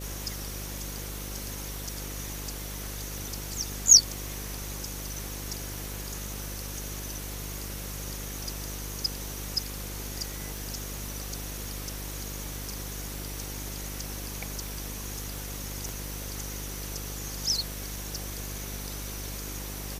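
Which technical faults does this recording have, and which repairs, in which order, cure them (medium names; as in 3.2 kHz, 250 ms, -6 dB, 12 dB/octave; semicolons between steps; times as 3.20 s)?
buzz 50 Hz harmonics 11 -39 dBFS
crackle 23 per s -40 dBFS
3.18 s: pop
10.57 s: pop
15.89 s: pop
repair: de-click; de-hum 50 Hz, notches 11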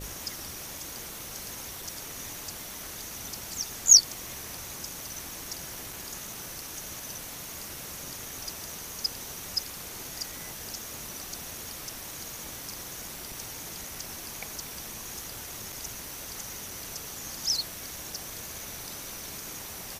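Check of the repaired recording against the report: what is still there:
nothing left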